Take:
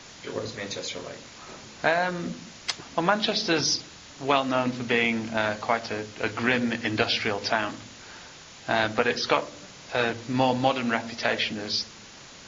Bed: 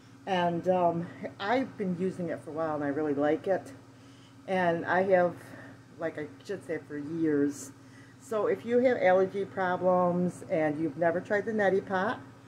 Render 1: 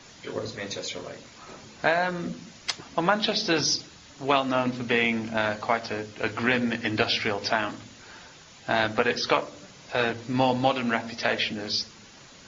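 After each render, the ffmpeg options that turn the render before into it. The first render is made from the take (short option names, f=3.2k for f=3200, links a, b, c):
-af "afftdn=nr=6:nf=-47"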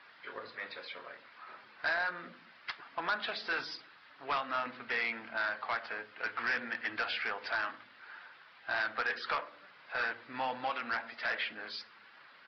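-af "bandpass=f=1.5k:t=q:w=1.8:csg=0,aresample=11025,asoftclip=type=tanh:threshold=-26.5dB,aresample=44100"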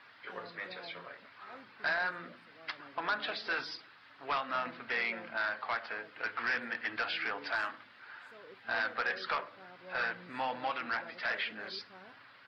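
-filter_complex "[1:a]volume=-26dB[a];[0:a][a]amix=inputs=2:normalize=0"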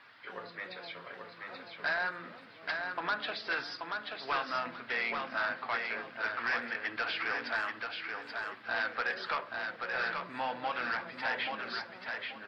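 -af "aecho=1:1:832|1664|2496:0.596|0.149|0.0372"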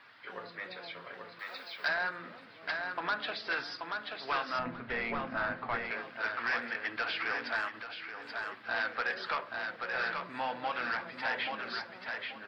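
-filter_complex "[0:a]asettb=1/sr,asplit=3[a][b][c];[a]atrim=end=1.394[d];[b]atrim=start=1.39:end=1.88,asetpts=PTS-STARTPTS,afade=t=in:d=0.004:c=qsin,afade=t=out:st=0.486:d=0.004:c=qsin,aemphasis=mode=production:type=riaa[e];[c]atrim=start=1.876[f];[d][e]acrossfade=d=0.004:c1=hsin:c2=qsin[g];[g][f]acrossfade=d=0.004:c1=qsin:c2=hsin,asettb=1/sr,asplit=3[h][i][j];[h]atrim=end=4.594[k];[i]atrim=start=4.59:end=5.91,asetpts=PTS-STARTPTS,afade=t=in:d=0.004:c=qsin,afade=t=out:st=1.316:d=0.004:c=qsin,aemphasis=mode=reproduction:type=riaa[l];[j]atrim=start=5.906[m];[k][l]acrossfade=d=0.004:c1=hsin:c2=qsin[n];[n][m]acrossfade=d=0.004:c1=qsin:c2=hsin,asettb=1/sr,asplit=3[o][p][q];[o]atrim=end=7.684[r];[p]atrim=start=7.68:end=8.24,asetpts=PTS-STARTPTS,afade=t=in:d=0.004:c=qsin,afade=t=out:st=0.556:d=0.004:c=qsin,acompressor=threshold=-39dB:ratio=6:attack=3.2:release=140:knee=1:detection=peak[s];[q]atrim=start=8.236[t];[r][s]acrossfade=d=0.004:c1=hsin:c2=qsin[u];[u][t]acrossfade=d=0.004:c1=qsin:c2=hsin"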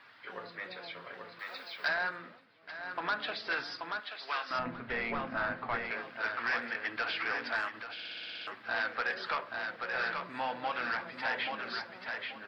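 -filter_complex "[0:a]asettb=1/sr,asplit=3[a][b][c];[a]atrim=end=4.004[d];[b]atrim=start=4:end=4.51,asetpts=PTS-STARTPTS,afade=t=in:d=0.004:c=qsin,afade=t=out:st=0.506:d=0.004:c=qsin,highpass=f=1.1k:p=1[e];[c]atrim=start=4.506[f];[d][e]acrossfade=d=0.004:c1=hsin:c2=qsin[g];[g][f]acrossfade=d=0.004:c1=qsin:c2=hsin,asplit=12[h][i][j][k][l][m][n][o][p][q][r][s];[h]atrim=end=2.44,asetpts=PTS-STARTPTS,afade=t=out:st=2.14:d=0.3:silence=0.266073[t];[i]atrim=start=2.44:end=2.7,asetpts=PTS-STARTPTS,volume=-11.5dB[u];[j]atrim=start=2.7:end=7.992,asetpts=PTS-STARTPTS,afade=t=in:d=0.3:silence=0.266073[v];[k]atrim=start=7.928:end=7.992[w];[l]atrim=start=7.928:end=7.992[x];[m]atrim=start=7.928:end=7.992[y];[n]atrim=start=7.928:end=7.992[z];[o]atrim=start=7.928:end=7.992[aa];[p]atrim=start=7.928:end=7.992[ab];[q]atrim=start=7.928:end=7.992[ac];[r]atrim=start=7.928:end=7.992[ad];[s]atrim=start=8.468[ae];[t][u][v]concat=n=3:v=0:a=1[af];[af][w]acrossfade=d=0.004:c1=hsin:c2=hsin[ag];[ag][x]acrossfade=d=0.004:c1=hsin:c2=hsin[ah];[ah][y]acrossfade=d=0.004:c1=hsin:c2=hsin[ai];[ai][z]acrossfade=d=0.004:c1=hsin:c2=hsin[aj];[aj][aa]acrossfade=d=0.004:c1=hsin:c2=hsin[ak];[ak][ab]acrossfade=d=0.004:c1=hsin:c2=hsin[al];[al][ac]acrossfade=d=0.004:c1=hsin:c2=hsin[am];[am][ad]acrossfade=d=0.004:c1=hsin:c2=hsin[an];[an][ae]acrossfade=d=0.004:c1=hsin:c2=hsin"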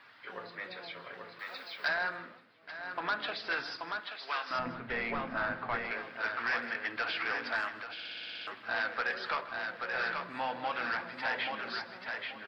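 -filter_complex "[0:a]asplit=2[a][b];[b]adelay=157.4,volume=-15dB,highshelf=f=4k:g=-3.54[c];[a][c]amix=inputs=2:normalize=0"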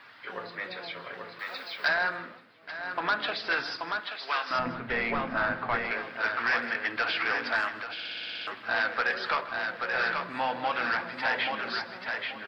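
-af "volume=5.5dB"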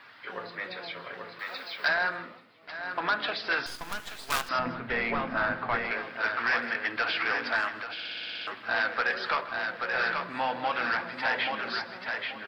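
-filter_complex "[0:a]asettb=1/sr,asplit=3[a][b][c];[a]atrim=end=2.234[d];[b]atrim=start=2.23:end=2.73,asetpts=PTS-STARTPTS,afade=t=in:d=0.004:c=qsin,afade=t=out:st=0.496:d=0.004:c=qsin,bandreject=f=1.6k:w=7.4[e];[c]atrim=start=2.726[f];[d][e]acrossfade=d=0.004:c1=hsin:c2=qsin[g];[g][f]acrossfade=d=0.004:c1=qsin:c2=hsin,asettb=1/sr,asplit=3[h][i][j];[h]atrim=end=3.664[k];[i]atrim=start=3.66:end=4.49,asetpts=PTS-STARTPTS,afade=t=in:d=0.004:c=qsin,afade=t=out:st=0.826:d=0.004:c=qsin,acrusher=bits=5:dc=4:mix=0:aa=0.000001[l];[j]atrim=start=4.486[m];[k][l]acrossfade=d=0.004:c1=hsin:c2=qsin[n];[n][m]acrossfade=d=0.004:c1=qsin:c2=hsin"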